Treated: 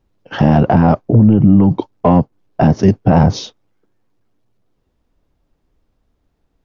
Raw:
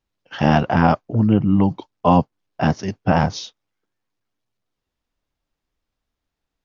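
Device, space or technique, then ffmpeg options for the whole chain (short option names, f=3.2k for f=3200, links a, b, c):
mastering chain: -af "equalizer=f=420:t=o:w=0.77:g=1.5,acompressor=threshold=-16dB:ratio=2.5,asoftclip=type=tanh:threshold=-10.5dB,tiltshelf=f=970:g=7,alimiter=level_in=11.5dB:limit=-1dB:release=50:level=0:latency=1,volume=-1dB"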